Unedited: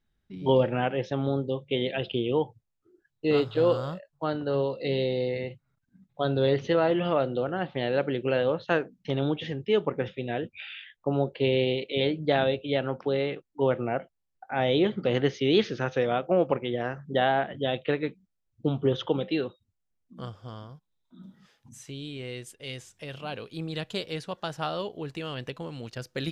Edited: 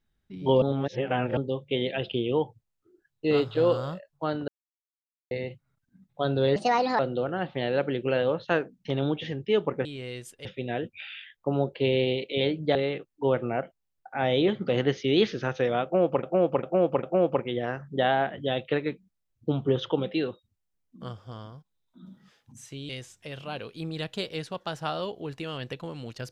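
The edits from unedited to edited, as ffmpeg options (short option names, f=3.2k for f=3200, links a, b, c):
-filter_complex "[0:a]asplit=14[a][b][c][d][e][f][g][h][i][j][k][l][m][n];[a]atrim=end=0.622[o];[b]atrim=start=0.618:end=1.372,asetpts=PTS-STARTPTS,areverse[p];[c]atrim=start=1.368:end=4.48,asetpts=PTS-STARTPTS,afade=t=out:st=3.108:d=0.004:c=hsin[q];[d]atrim=start=4.48:end=5.31,asetpts=PTS-STARTPTS,volume=0[r];[e]atrim=start=5.31:end=6.564,asetpts=PTS-STARTPTS,afade=t=in:d=0.004:c=hsin[s];[f]atrim=start=6.56:end=7.19,asetpts=PTS-STARTPTS,asetrate=64386,aresample=44100,atrim=end_sample=19029,asetpts=PTS-STARTPTS[t];[g]atrim=start=7.186:end=10.052[u];[h]atrim=start=22.058:end=22.662[v];[i]atrim=start=10.048:end=12.352[w];[j]atrim=start=13.118:end=16.602[x];[k]atrim=start=16.198:end=16.602[y];[l]atrim=start=16.198:end=16.602[z];[m]atrim=start=16.198:end=22.062[aa];[n]atrim=start=22.658[ab];[o][p]acrossfade=d=0.004:c1=hsin:c2=hsin[ac];[q][r][s]concat=n=3:v=0:a=1[ad];[ac][ad]acrossfade=d=0.004:c1=hsin:c2=hsin[ae];[ae][t]acrossfade=d=0.004:c1=hsin:c2=hsin[af];[af][u]acrossfade=d=0.004:c1=hsin:c2=hsin[ag];[ag][v]acrossfade=d=0.004:c1=hsin:c2=hsin[ah];[ah][w]acrossfade=d=0.004:c1=hsin:c2=hsin[ai];[ai][x]acrossfade=d=0.004:c1=hsin:c2=hsin[aj];[aj][y]acrossfade=d=0.004:c1=hsin:c2=hsin[ak];[ak][z]acrossfade=d=0.004:c1=hsin:c2=hsin[al];[al][aa]acrossfade=d=0.004:c1=hsin:c2=hsin[am];[am][ab]acrossfade=d=0.004:c1=hsin:c2=hsin"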